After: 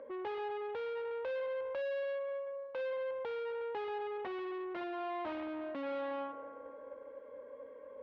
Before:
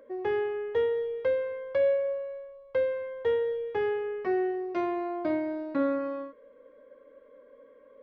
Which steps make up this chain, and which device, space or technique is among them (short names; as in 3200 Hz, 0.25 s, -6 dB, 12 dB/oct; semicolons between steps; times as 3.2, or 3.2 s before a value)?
analogue delay pedal into a guitar amplifier (analogue delay 0.179 s, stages 2048, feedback 62%, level -16.5 dB; tube stage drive 42 dB, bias 0.4; speaker cabinet 76–3400 Hz, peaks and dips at 130 Hz -8 dB, 540 Hz +4 dB, 860 Hz +9 dB); 2.03–2.79 low shelf 140 Hz -8.5 dB; gain +2 dB